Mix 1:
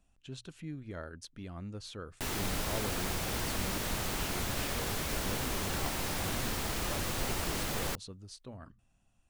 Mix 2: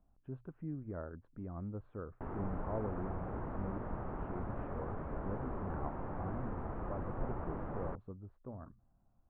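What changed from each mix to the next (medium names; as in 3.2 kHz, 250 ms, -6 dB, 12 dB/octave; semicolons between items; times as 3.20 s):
background -4.0 dB; master: add inverse Chebyshev low-pass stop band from 5.3 kHz, stop band 70 dB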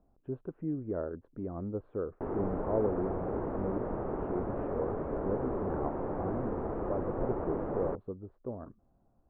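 speech: remove hum notches 60/120 Hz; master: add peaking EQ 420 Hz +12.5 dB 1.7 oct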